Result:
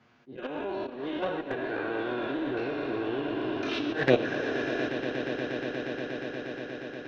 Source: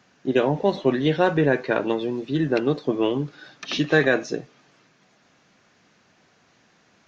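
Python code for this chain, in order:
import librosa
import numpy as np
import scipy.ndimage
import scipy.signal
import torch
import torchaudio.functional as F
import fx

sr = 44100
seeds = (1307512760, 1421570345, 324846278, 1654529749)

y = fx.spec_trails(x, sr, decay_s=2.82)
y = scipy.signal.sosfilt(scipy.signal.butter(2, 3300.0, 'lowpass', fs=sr, output='sos'), y)
y = fx.notch(y, sr, hz=1800.0, q=20.0)
y = fx.level_steps(y, sr, step_db=15)
y = fx.auto_swell(y, sr, attack_ms=207.0)
y = fx.env_flanger(y, sr, rest_ms=8.7, full_db=-16.5)
y = fx.echo_swell(y, sr, ms=119, loudest=8, wet_db=-14.0)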